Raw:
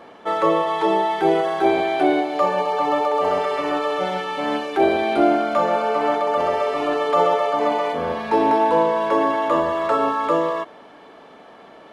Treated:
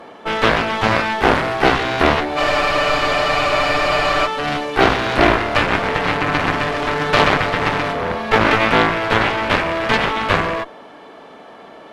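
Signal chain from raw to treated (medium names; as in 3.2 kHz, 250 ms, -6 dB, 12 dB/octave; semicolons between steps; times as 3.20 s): Chebyshev shaper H 6 -13 dB, 7 -9 dB, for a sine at -4.5 dBFS; spectral freeze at 2.39 s, 1.88 s; trim +1.5 dB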